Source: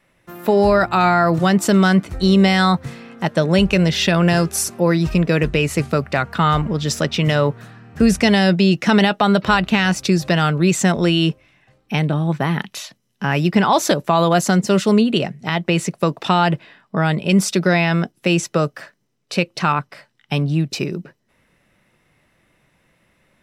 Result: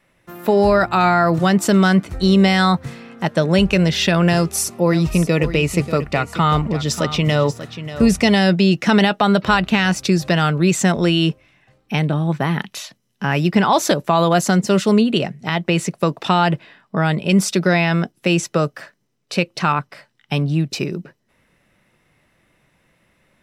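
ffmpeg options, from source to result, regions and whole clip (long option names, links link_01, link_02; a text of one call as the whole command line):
ffmpeg -i in.wav -filter_complex "[0:a]asettb=1/sr,asplit=3[link_01][link_02][link_03];[link_01]atrim=end=4.344[link_04];[link_02]atrim=start=4.34:end=8.36,asetpts=PTS-STARTPTS,afade=type=in:duration=0.004:curve=qsin,afade=type=out:start_time=4.016:duration=0.004:curve=qsin,bandreject=frequency=1600:width=6.8,aecho=1:1:588:0.237,atrim=end_sample=177282[link_05];[link_03]atrim=start=8.356[link_06];[link_04][link_05]acrossfade=duration=0.004:curve1=hsin:curve2=qsin[link_07];[link_07][link_06]acrossfade=duration=0.004:curve1=qsin:curve2=hsin" out.wav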